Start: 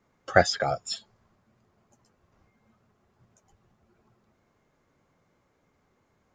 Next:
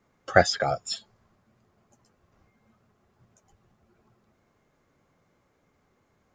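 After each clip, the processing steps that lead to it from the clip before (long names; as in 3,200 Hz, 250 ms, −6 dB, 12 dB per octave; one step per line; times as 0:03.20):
notch filter 930 Hz, Q 27
level +1 dB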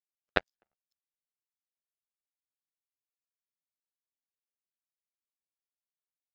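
transient designer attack +11 dB, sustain +7 dB
power curve on the samples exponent 3
ring modulation 61 Hz
level −10.5 dB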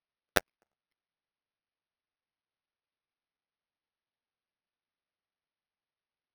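bad sample-rate conversion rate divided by 6×, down none, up hold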